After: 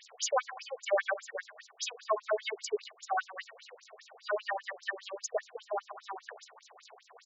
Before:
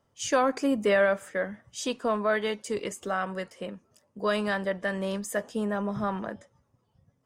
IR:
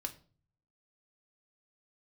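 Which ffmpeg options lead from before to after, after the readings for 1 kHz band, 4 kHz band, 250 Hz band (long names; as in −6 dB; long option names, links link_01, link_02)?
−5.0 dB, −3.5 dB, below −25 dB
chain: -af "aeval=exprs='val(0)+0.5*0.00944*sgn(val(0))':channel_layout=same,highshelf=frequency=11000:gain=11.5,aecho=1:1:2.7:0.48,afftfilt=real='re*between(b*sr/1024,540*pow(5500/540,0.5+0.5*sin(2*PI*5*pts/sr))/1.41,540*pow(5500/540,0.5+0.5*sin(2*PI*5*pts/sr))*1.41)':imag='im*between(b*sr/1024,540*pow(5500/540,0.5+0.5*sin(2*PI*5*pts/sr))/1.41,540*pow(5500/540,0.5+0.5*sin(2*PI*5*pts/sr))*1.41)':win_size=1024:overlap=0.75"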